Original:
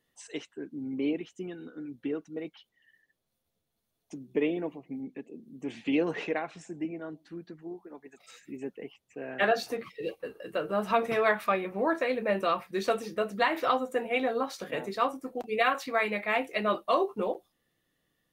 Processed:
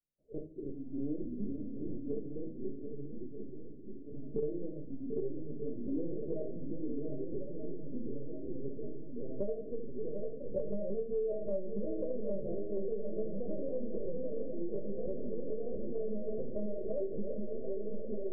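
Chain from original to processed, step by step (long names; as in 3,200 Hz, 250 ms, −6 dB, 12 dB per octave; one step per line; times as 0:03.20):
each half-wave held at its own peak
noise gate −49 dBFS, range −22 dB
Chebyshev low-pass with heavy ripple 630 Hz, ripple 6 dB
tuned comb filter 64 Hz, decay 0.17 s, harmonics all, mix 60%
delay with pitch and tempo change per echo 267 ms, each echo −2 semitones, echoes 2, each echo −6 dB
linear-prediction vocoder at 8 kHz pitch kept
feedback echo with a long and a short gap by turns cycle 1,234 ms, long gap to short 1.5 to 1, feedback 60%, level −11 dB
rectangular room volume 310 cubic metres, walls furnished, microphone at 1.1 metres
downward compressor 6 to 1, threshold −30 dBFS, peak gain reduction 12 dB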